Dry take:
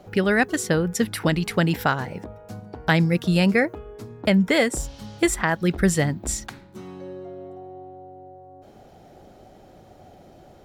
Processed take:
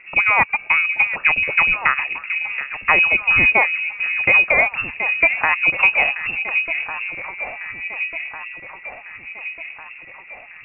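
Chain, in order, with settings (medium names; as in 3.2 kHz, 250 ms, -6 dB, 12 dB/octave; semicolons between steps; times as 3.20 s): transient shaper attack 0 dB, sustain -5 dB; echo whose repeats swap between lows and highs 725 ms, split 1 kHz, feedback 74%, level -8 dB; frequency inversion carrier 2.7 kHz; trim +4 dB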